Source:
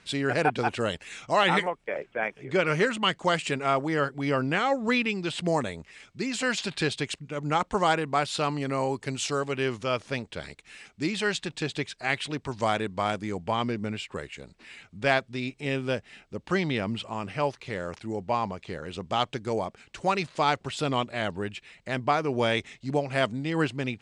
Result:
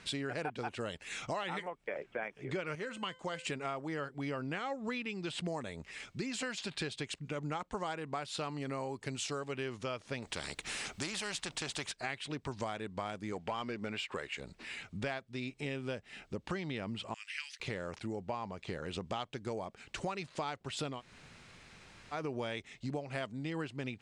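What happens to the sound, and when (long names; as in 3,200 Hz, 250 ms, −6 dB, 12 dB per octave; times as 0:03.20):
0:02.75–0:03.45: tuned comb filter 510 Hz, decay 0.31 s
0:10.22–0:11.92: every bin compressed towards the loudest bin 2 to 1
0:13.32–0:14.40: mid-hump overdrive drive 13 dB, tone 4,200 Hz, clips at −14.5 dBFS
0:17.14–0:17.60: Butterworth high-pass 1,800 Hz
0:20.94–0:22.19: fill with room tone, crossfade 0.16 s
whole clip: downward compressor 6 to 1, threshold −39 dBFS; level +2.5 dB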